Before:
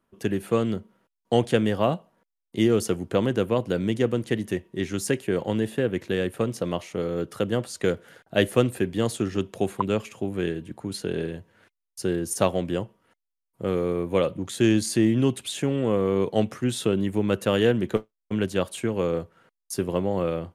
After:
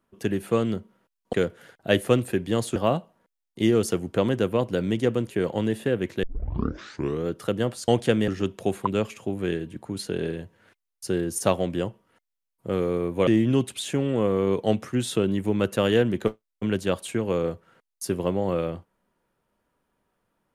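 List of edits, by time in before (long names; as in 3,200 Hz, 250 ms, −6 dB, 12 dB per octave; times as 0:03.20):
0:01.33–0:01.73: swap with 0:07.80–0:09.23
0:04.27–0:05.22: remove
0:06.15: tape start 1.03 s
0:14.22–0:14.96: remove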